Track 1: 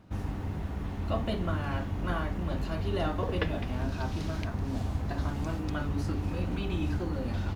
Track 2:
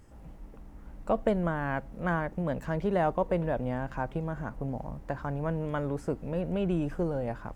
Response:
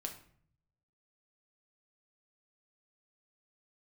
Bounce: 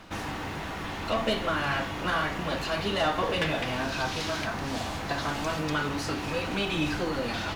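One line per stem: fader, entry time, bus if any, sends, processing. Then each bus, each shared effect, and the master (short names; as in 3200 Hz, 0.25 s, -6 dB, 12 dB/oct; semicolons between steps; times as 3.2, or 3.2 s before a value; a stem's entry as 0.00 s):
-4.0 dB, 0.00 s, send -5 dB, high shelf 2000 Hz +12 dB; overdrive pedal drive 21 dB, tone 2900 Hz, clips at -12 dBFS; auto duck -7 dB, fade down 0.20 s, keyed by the second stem
-1.5 dB, 0.00 s, no send, ensemble effect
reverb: on, RT60 0.55 s, pre-delay 6 ms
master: dry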